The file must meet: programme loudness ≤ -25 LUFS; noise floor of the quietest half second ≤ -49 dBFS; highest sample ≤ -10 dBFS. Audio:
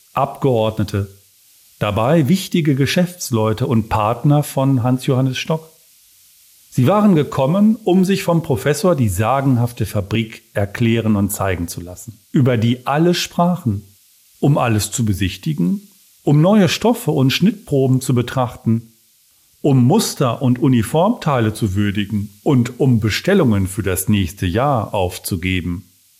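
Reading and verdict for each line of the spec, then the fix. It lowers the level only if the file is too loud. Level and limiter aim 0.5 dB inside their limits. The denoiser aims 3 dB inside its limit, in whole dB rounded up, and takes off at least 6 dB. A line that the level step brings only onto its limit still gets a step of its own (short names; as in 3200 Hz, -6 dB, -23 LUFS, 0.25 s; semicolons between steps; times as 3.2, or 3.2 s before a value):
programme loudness -17.0 LUFS: fail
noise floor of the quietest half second -55 dBFS: OK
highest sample -5.0 dBFS: fail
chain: gain -8.5 dB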